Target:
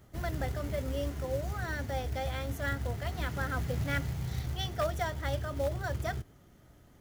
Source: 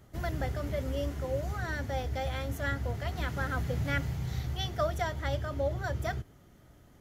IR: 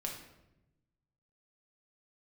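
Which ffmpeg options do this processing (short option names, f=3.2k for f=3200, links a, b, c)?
-af "aeval=exprs='0.0841*(abs(mod(val(0)/0.0841+3,4)-2)-1)':c=same,acrusher=bits=5:mode=log:mix=0:aa=0.000001,volume=-1dB"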